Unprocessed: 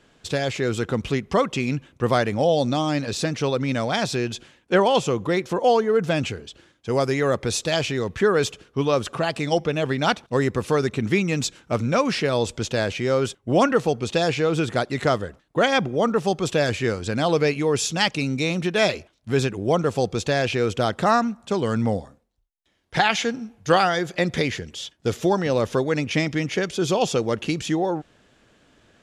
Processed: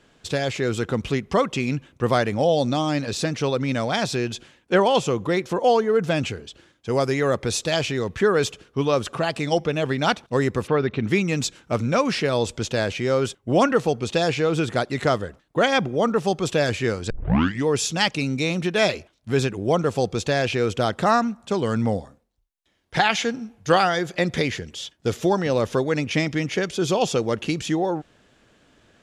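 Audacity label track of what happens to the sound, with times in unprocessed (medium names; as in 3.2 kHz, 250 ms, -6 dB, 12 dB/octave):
10.660000	11.070000	low-pass 2.8 kHz -> 5.2 kHz 24 dB/octave
17.100000	17.100000	tape start 0.57 s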